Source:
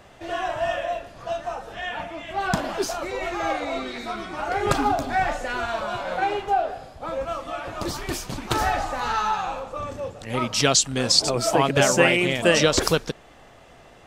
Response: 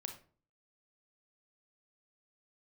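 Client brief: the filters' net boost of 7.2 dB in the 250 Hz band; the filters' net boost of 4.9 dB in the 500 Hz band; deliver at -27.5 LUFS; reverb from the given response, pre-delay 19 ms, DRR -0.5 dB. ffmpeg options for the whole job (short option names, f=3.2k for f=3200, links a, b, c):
-filter_complex "[0:a]equalizer=f=250:t=o:g=8,equalizer=f=500:t=o:g=4,asplit=2[a][b];[1:a]atrim=start_sample=2205,adelay=19[c];[b][c]afir=irnorm=-1:irlink=0,volume=3.5dB[d];[a][d]amix=inputs=2:normalize=0,volume=-10dB"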